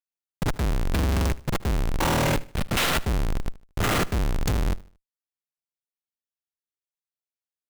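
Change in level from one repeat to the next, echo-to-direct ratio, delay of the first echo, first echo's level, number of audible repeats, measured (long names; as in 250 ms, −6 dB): −9.0 dB, −20.0 dB, 76 ms, −20.5 dB, 2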